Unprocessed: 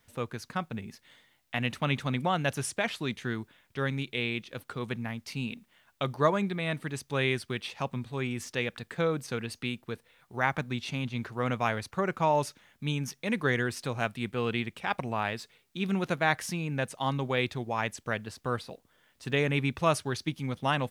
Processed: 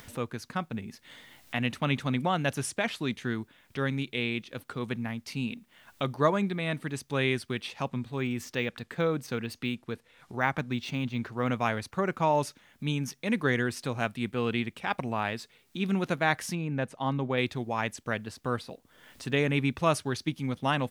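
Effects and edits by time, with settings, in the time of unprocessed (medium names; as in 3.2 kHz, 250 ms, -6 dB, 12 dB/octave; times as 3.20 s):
7.88–11.49 s: decimation joined by straight lines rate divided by 2×
16.55–17.38 s: treble shelf 3.1 kHz -11 dB
whole clip: upward compressor, threshold -38 dBFS; peaking EQ 260 Hz +3.5 dB 0.67 oct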